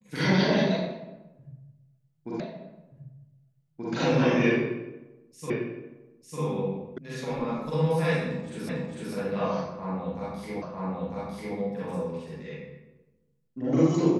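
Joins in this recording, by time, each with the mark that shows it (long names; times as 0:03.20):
0:02.40: the same again, the last 1.53 s
0:05.50: the same again, the last 0.9 s
0:06.98: cut off before it has died away
0:08.69: the same again, the last 0.45 s
0:10.62: the same again, the last 0.95 s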